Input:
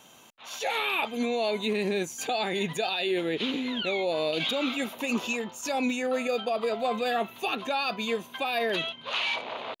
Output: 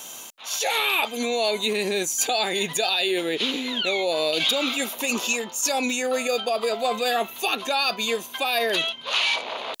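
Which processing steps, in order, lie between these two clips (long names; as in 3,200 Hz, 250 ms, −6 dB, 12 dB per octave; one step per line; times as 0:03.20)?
reversed playback
upward compression, threshold −40 dBFS
reversed playback
bass and treble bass −8 dB, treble +11 dB
level +4 dB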